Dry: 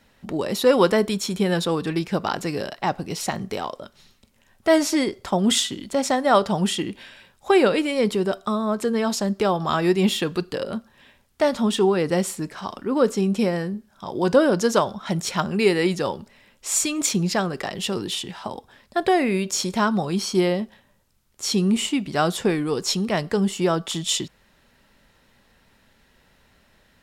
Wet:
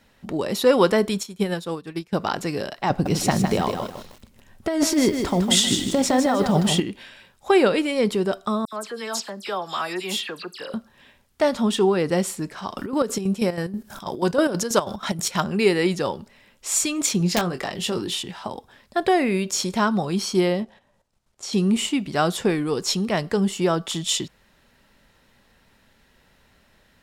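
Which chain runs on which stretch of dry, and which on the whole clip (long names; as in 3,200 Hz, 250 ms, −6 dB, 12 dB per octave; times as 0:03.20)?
0:01.23–0:02.13: high-shelf EQ 9,400 Hz +6.5 dB + expander for the loud parts 2.5 to 1, over −31 dBFS
0:02.90–0:06.80: low-shelf EQ 360 Hz +8 dB + compressor whose output falls as the input rises −19 dBFS + feedback echo at a low word length 156 ms, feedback 35%, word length 7 bits, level −6 dB
0:08.65–0:10.74: high-pass filter 1,200 Hz 6 dB per octave + all-pass dispersion lows, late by 76 ms, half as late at 2,900 Hz
0:12.77–0:15.44: high-shelf EQ 6,800 Hz +7.5 dB + upward compression, threshold −20 dBFS + square-wave tremolo 6.2 Hz, depth 65%, duty 55%
0:17.18–0:18.23: wrap-around overflow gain 12.5 dB + double-tracking delay 23 ms −8.5 dB
0:20.63–0:21.53: low-pass filter 9,300 Hz + output level in coarse steps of 11 dB + parametric band 690 Hz +7 dB 1.2 octaves
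whole clip: no processing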